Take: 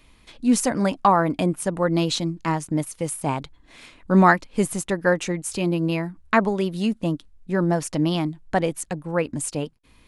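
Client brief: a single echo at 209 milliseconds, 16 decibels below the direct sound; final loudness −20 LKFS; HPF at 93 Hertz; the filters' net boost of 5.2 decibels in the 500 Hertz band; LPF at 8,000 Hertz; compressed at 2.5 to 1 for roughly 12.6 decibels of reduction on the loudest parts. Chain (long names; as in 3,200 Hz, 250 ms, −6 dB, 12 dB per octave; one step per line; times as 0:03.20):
high-pass filter 93 Hz
low-pass filter 8,000 Hz
parametric band 500 Hz +6.5 dB
downward compressor 2.5 to 1, threshold −29 dBFS
single-tap delay 209 ms −16 dB
level +10 dB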